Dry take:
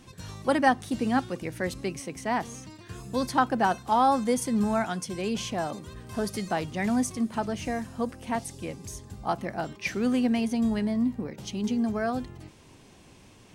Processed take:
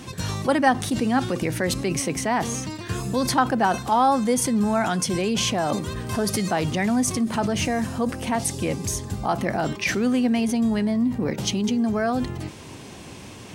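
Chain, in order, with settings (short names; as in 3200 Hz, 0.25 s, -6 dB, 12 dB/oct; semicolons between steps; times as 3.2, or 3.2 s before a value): HPF 63 Hz; in parallel at +1 dB: negative-ratio compressor -36 dBFS, ratio -1; on the sum: gain +2.5 dB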